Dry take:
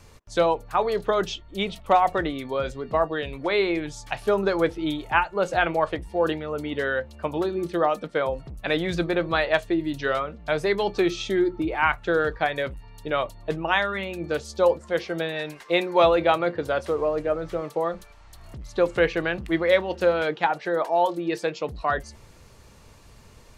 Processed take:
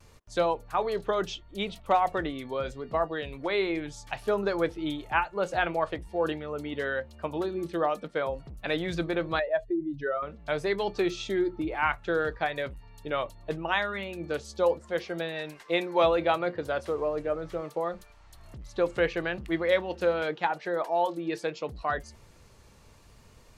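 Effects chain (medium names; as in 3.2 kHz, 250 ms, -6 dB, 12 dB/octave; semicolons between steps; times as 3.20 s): 9.39–10.23 s: spectral contrast enhancement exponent 1.9; vibrato 0.74 Hz 29 cents; trim -5 dB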